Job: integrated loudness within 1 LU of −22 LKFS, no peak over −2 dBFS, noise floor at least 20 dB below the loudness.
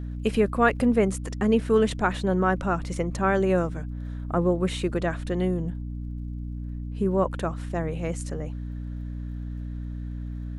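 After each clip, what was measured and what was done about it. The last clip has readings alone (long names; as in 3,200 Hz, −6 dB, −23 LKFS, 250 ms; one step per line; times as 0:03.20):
crackle rate 29 per second; mains hum 60 Hz; hum harmonics up to 300 Hz; level of the hum −31 dBFS; integrated loudness −27.0 LKFS; sample peak −6.5 dBFS; target loudness −22.0 LKFS
→ click removal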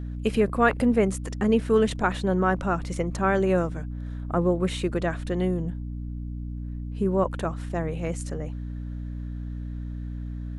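crackle rate 0 per second; mains hum 60 Hz; hum harmonics up to 300 Hz; level of the hum −31 dBFS
→ hum removal 60 Hz, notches 5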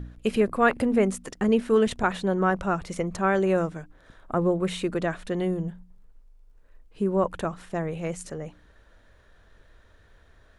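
mains hum none found; integrated loudness −26.0 LKFS; sample peak −7.0 dBFS; target loudness −22.0 LKFS
→ level +4 dB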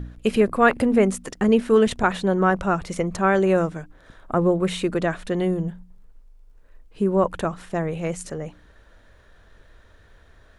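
integrated loudness −22.0 LKFS; sample peak −3.0 dBFS; background noise floor −53 dBFS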